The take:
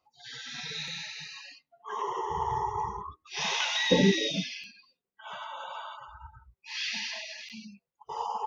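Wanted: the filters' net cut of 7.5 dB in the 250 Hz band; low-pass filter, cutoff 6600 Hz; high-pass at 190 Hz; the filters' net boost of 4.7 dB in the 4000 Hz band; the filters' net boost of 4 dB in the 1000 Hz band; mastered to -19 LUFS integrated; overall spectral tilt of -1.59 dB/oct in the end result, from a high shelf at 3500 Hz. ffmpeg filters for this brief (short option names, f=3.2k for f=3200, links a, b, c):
-af "highpass=190,lowpass=6.6k,equalizer=f=250:t=o:g=-8,equalizer=f=1k:t=o:g=4.5,highshelf=f=3.5k:g=3.5,equalizer=f=4k:t=o:g=3.5,volume=10dB"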